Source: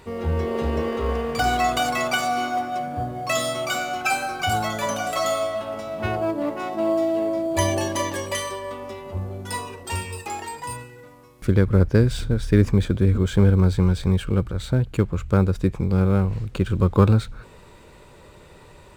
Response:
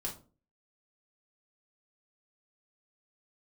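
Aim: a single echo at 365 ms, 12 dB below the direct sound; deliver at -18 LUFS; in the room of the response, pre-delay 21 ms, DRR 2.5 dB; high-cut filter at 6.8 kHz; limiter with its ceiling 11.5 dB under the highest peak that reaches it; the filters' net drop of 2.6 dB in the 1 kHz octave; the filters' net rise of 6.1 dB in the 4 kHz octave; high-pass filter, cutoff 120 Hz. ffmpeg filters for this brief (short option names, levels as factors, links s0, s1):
-filter_complex "[0:a]highpass=120,lowpass=6800,equalizer=f=1000:t=o:g=-4.5,equalizer=f=4000:t=o:g=9,alimiter=limit=0.168:level=0:latency=1,aecho=1:1:365:0.251,asplit=2[s0][s1];[1:a]atrim=start_sample=2205,adelay=21[s2];[s1][s2]afir=irnorm=-1:irlink=0,volume=0.708[s3];[s0][s3]amix=inputs=2:normalize=0,volume=2"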